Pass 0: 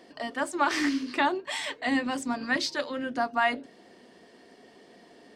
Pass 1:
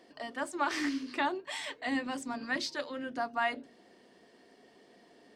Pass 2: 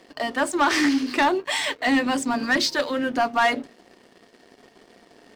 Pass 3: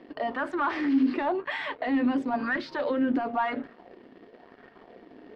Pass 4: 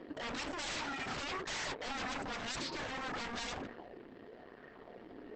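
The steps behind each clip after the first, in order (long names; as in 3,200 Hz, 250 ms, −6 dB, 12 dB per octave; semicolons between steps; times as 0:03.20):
mains-hum notches 60/120/180/240 Hz; level −6 dB
leveller curve on the samples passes 2; level +6.5 dB
brickwall limiter −23.5 dBFS, peak gain reduction 12 dB; high-frequency loss of the air 370 metres; auto-filter bell 0.97 Hz 270–1,600 Hz +9 dB
transient designer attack −3 dB, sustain +5 dB; wave folding −33.5 dBFS; Opus 12 kbit/s 48,000 Hz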